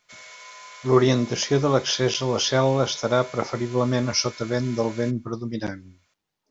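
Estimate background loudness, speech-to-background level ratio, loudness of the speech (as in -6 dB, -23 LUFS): -42.5 LUFS, 19.5 dB, -23.0 LUFS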